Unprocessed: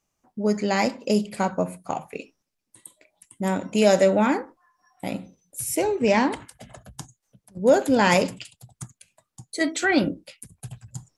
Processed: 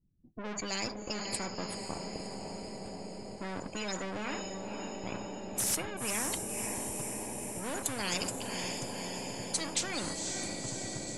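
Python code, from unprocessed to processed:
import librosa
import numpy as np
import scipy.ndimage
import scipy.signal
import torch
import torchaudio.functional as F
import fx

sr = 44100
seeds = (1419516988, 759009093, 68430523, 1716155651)

p1 = np.where(x < 0.0, 10.0 ** (-3.0 / 20.0) * x, x)
p2 = fx.spec_gate(p1, sr, threshold_db=-25, keep='strong')
p3 = fx.curve_eq(p2, sr, hz=(190.0, 1500.0, 10000.0), db=(0, -28, 15))
p4 = fx.leveller(p3, sr, passes=1)
p5 = fx.comb_fb(p4, sr, f0_hz=330.0, decay_s=0.16, harmonics='odd', damping=0.0, mix_pct=50)
p6 = fx.env_lowpass(p5, sr, base_hz=310.0, full_db=-27.0)
p7 = fx.air_absorb(p6, sr, metres=110.0)
p8 = p7 + fx.echo_diffused(p7, sr, ms=525, feedback_pct=65, wet_db=-12, dry=0)
y = fx.spectral_comp(p8, sr, ratio=4.0)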